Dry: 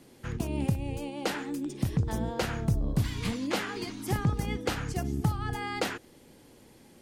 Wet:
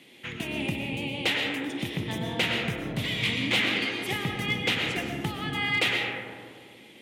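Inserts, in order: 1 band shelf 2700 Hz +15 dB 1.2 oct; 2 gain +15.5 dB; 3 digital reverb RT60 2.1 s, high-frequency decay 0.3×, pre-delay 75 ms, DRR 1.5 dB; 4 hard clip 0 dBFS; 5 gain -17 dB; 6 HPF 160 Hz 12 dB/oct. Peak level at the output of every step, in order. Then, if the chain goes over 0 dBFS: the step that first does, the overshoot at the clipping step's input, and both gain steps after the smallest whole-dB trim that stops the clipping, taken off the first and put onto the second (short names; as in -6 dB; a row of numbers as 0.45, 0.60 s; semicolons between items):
-9.0, +6.5, +6.5, 0.0, -17.0, -13.5 dBFS; step 2, 6.5 dB; step 2 +8.5 dB, step 5 -10 dB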